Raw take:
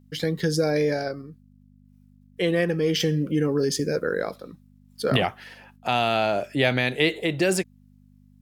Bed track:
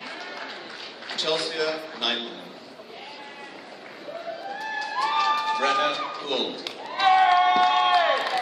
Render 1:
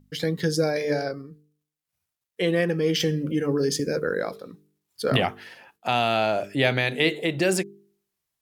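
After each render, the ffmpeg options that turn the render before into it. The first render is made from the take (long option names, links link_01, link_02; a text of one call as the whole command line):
ffmpeg -i in.wav -af "bandreject=frequency=50:width_type=h:width=4,bandreject=frequency=100:width_type=h:width=4,bandreject=frequency=150:width_type=h:width=4,bandreject=frequency=200:width_type=h:width=4,bandreject=frequency=250:width_type=h:width=4,bandreject=frequency=300:width_type=h:width=4,bandreject=frequency=350:width_type=h:width=4,bandreject=frequency=400:width_type=h:width=4,bandreject=frequency=450:width_type=h:width=4" out.wav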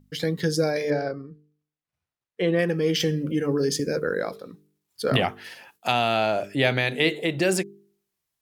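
ffmpeg -i in.wav -filter_complex "[0:a]asettb=1/sr,asplit=3[link_01][link_02][link_03];[link_01]atrim=end=0.904[link_04];[link_02]atrim=start=0.9:end=2.59,asetpts=PTS-STARTPTS,afade=type=in:duration=0.004:curve=qsin,afade=type=out:start_time=1.686:duration=0.004:curve=qsin,aemphasis=mode=reproduction:type=75fm[link_05];[link_03]atrim=start=2.586[link_06];[link_04][link_05]acrossfade=duration=0.004:curve1=hsin:curve2=qsin[link_07];[link_07][link_06]acrossfade=duration=0.004:curve1=qsin:curve2=hsin,asettb=1/sr,asplit=3[link_08][link_09][link_10];[link_08]atrim=end=5.444[link_11];[link_09]atrim=start=5.44:end=5.92,asetpts=PTS-STARTPTS,afade=type=in:duration=0.004:curve=qsin,afade=type=out:start_time=0.476:duration=0.004:curve=qsin,highshelf=frequency=3200:gain=9.5[link_12];[link_10]atrim=start=5.916[link_13];[link_11][link_12]acrossfade=duration=0.004:curve1=hsin:curve2=qsin[link_14];[link_14][link_13]acrossfade=duration=0.004:curve1=qsin:curve2=hsin" out.wav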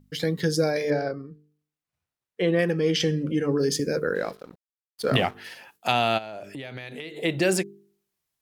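ffmpeg -i in.wav -filter_complex "[0:a]asettb=1/sr,asplit=3[link_01][link_02][link_03];[link_01]atrim=end=2.734[link_04];[link_02]atrim=start=2.73:end=3.6,asetpts=PTS-STARTPTS,afade=type=in:duration=0.004:curve=qsin,afade=type=out:start_time=0.866:duration=0.004:curve=qsin,lowpass=8600[link_05];[link_03]atrim=start=3.596[link_06];[link_04][link_05]acrossfade=duration=0.004:curve1=hsin:curve2=qsin[link_07];[link_07][link_06]acrossfade=duration=0.004:curve1=qsin:curve2=hsin,asettb=1/sr,asplit=3[link_08][link_09][link_10];[link_08]atrim=end=4.154[link_11];[link_09]atrim=start=4.15:end=5.35,asetpts=PTS-STARTPTS,afade=type=in:duration=0.004:curve=qsin,afade=type=out:start_time=1.196:duration=0.004:curve=qsin,aeval=exprs='sgn(val(0))*max(abs(val(0))-0.00501,0)':channel_layout=same[link_12];[link_10]atrim=start=5.346[link_13];[link_11][link_12]acrossfade=duration=0.004:curve1=hsin:curve2=qsin[link_14];[link_14][link_13]acrossfade=duration=0.004:curve1=qsin:curve2=hsin,asplit=3[link_15][link_16][link_17];[link_15]afade=type=out:start_time=6.17:duration=0.02[link_18];[link_16]acompressor=threshold=-33dB:ratio=10:attack=3.2:release=140:knee=1:detection=peak,afade=type=in:start_time=6.17:duration=0.02,afade=type=out:start_time=7.16:duration=0.02[link_19];[link_17]afade=type=in:start_time=7.16:duration=0.02[link_20];[link_18][link_19][link_20]amix=inputs=3:normalize=0" out.wav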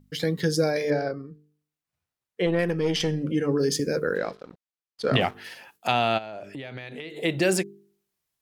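ffmpeg -i in.wav -filter_complex "[0:a]asettb=1/sr,asplit=3[link_01][link_02][link_03];[link_01]atrim=end=2.464[link_04];[link_02]atrim=start=2.46:end=3.23,asetpts=PTS-STARTPTS,afade=type=in:duration=0.004:curve=qsin,afade=type=out:start_time=0.766:duration=0.004:curve=qsin,aeval=exprs='(tanh(5.01*val(0)+0.4)-tanh(0.4))/5.01':channel_layout=same[link_05];[link_03]atrim=start=3.226[link_06];[link_04][link_05]acrossfade=duration=0.004:curve1=hsin:curve2=qsin[link_07];[link_07][link_06]acrossfade=duration=0.004:curve1=qsin:curve2=hsin,asettb=1/sr,asplit=3[link_08][link_09][link_10];[link_08]atrim=end=4.184[link_11];[link_09]atrim=start=4.18:end=5.21,asetpts=PTS-STARTPTS,afade=type=in:duration=0.004:curve=qsin,afade=type=out:start_time=1.026:duration=0.004:curve=qsin,lowpass=6000[link_12];[link_10]atrim=start=5.206[link_13];[link_11][link_12]acrossfade=duration=0.004:curve1=hsin:curve2=qsin[link_14];[link_14][link_13]acrossfade=duration=0.004:curve1=qsin:curve2=hsin,asettb=1/sr,asplit=3[link_15][link_16][link_17];[link_15]atrim=end=5.874[link_18];[link_16]atrim=start=5.87:end=7.1,asetpts=PTS-STARTPTS,afade=type=in:duration=0.004:curve=qsin,afade=type=out:start_time=1.226:duration=0.004:curve=qsin,highshelf=frequency=7200:gain=-11[link_19];[link_17]atrim=start=7.096[link_20];[link_18][link_19]acrossfade=duration=0.004:curve1=hsin:curve2=qsin[link_21];[link_21][link_20]acrossfade=duration=0.004:curve1=qsin:curve2=hsin" out.wav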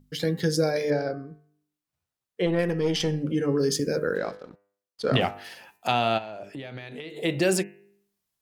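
ffmpeg -i in.wav -af "equalizer=frequency=2100:width=1.5:gain=-2.5,bandreject=frequency=100.4:width_type=h:width=4,bandreject=frequency=200.8:width_type=h:width=4,bandreject=frequency=301.2:width_type=h:width=4,bandreject=frequency=401.6:width_type=h:width=4,bandreject=frequency=502:width_type=h:width=4,bandreject=frequency=602.4:width_type=h:width=4,bandreject=frequency=702.8:width_type=h:width=4,bandreject=frequency=803.2:width_type=h:width=4,bandreject=frequency=903.6:width_type=h:width=4,bandreject=frequency=1004:width_type=h:width=4,bandreject=frequency=1104.4:width_type=h:width=4,bandreject=frequency=1204.8:width_type=h:width=4,bandreject=frequency=1305.2:width_type=h:width=4,bandreject=frequency=1405.6:width_type=h:width=4,bandreject=frequency=1506:width_type=h:width=4,bandreject=frequency=1606.4:width_type=h:width=4,bandreject=frequency=1706.8:width_type=h:width=4,bandreject=frequency=1807.2:width_type=h:width=4,bandreject=frequency=1907.6:width_type=h:width=4,bandreject=frequency=2008:width_type=h:width=4,bandreject=frequency=2108.4:width_type=h:width=4,bandreject=frequency=2208.8:width_type=h:width=4,bandreject=frequency=2309.2:width_type=h:width=4,bandreject=frequency=2409.6:width_type=h:width=4,bandreject=frequency=2510:width_type=h:width=4,bandreject=frequency=2610.4:width_type=h:width=4,bandreject=frequency=2710.8:width_type=h:width=4,bandreject=frequency=2811.2:width_type=h:width=4,bandreject=frequency=2911.6:width_type=h:width=4" out.wav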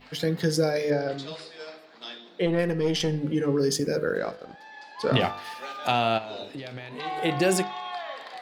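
ffmpeg -i in.wav -i bed.wav -filter_complex "[1:a]volume=-15dB[link_01];[0:a][link_01]amix=inputs=2:normalize=0" out.wav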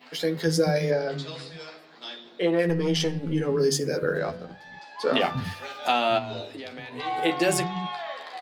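ffmpeg -i in.wav -filter_complex "[0:a]asplit=2[link_01][link_02];[link_02]adelay=12,volume=-5dB[link_03];[link_01][link_03]amix=inputs=2:normalize=0,acrossover=split=200[link_04][link_05];[link_04]adelay=230[link_06];[link_06][link_05]amix=inputs=2:normalize=0" out.wav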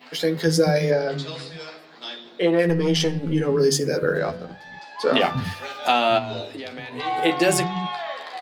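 ffmpeg -i in.wav -af "volume=4dB" out.wav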